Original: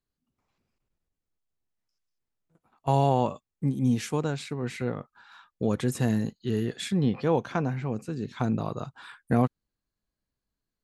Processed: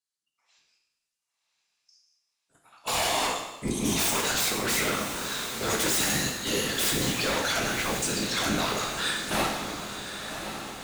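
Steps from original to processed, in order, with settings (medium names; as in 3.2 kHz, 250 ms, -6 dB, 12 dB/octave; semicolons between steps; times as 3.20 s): frequency weighting ITU-R 468; spectral noise reduction 15 dB; treble shelf 6.7 kHz +8 dB; in parallel at +3 dB: peak limiter -21 dBFS, peak gain reduction 12 dB; on the sum: level rider gain up to 5 dB; wavefolder -18.5 dBFS; whisper effect; echo that smears into a reverb 1091 ms, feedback 52%, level -8 dB; plate-style reverb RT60 1 s, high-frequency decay 0.95×, DRR 0.5 dB; trim -4.5 dB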